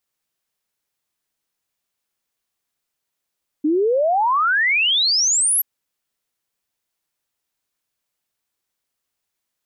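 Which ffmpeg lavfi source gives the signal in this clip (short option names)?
-f lavfi -i "aevalsrc='0.188*clip(min(t,1.98-t)/0.01,0,1)*sin(2*PI*290*1.98/log(12000/290)*(exp(log(12000/290)*t/1.98)-1))':d=1.98:s=44100"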